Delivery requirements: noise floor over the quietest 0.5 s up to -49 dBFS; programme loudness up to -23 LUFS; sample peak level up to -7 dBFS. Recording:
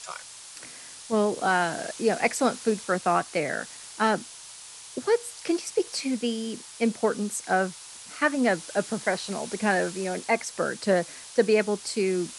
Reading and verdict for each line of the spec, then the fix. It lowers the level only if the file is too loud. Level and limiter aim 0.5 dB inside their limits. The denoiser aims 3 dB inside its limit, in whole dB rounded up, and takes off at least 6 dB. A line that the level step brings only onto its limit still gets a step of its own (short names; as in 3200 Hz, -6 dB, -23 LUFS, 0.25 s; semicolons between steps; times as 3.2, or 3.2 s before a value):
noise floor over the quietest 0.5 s -44 dBFS: fail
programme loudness -26.5 LUFS: OK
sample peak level -8.5 dBFS: OK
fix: denoiser 8 dB, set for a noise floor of -44 dBFS